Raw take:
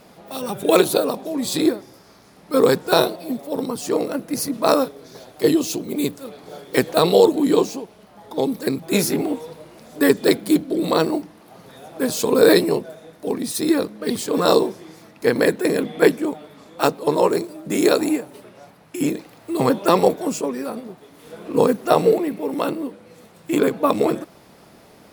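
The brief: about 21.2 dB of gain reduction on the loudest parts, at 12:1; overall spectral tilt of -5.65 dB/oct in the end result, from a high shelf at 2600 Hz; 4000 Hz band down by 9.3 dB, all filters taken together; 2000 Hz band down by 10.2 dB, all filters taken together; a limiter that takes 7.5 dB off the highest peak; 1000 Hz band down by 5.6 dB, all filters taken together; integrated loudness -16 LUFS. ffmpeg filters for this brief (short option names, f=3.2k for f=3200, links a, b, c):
-af "equalizer=f=1k:t=o:g=-4.5,equalizer=f=2k:t=o:g=-8.5,highshelf=f=2.6k:g=-6,equalizer=f=4k:t=o:g=-3.5,acompressor=threshold=-31dB:ratio=12,volume=22dB,alimiter=limit=-4dB:level=0:latency=1"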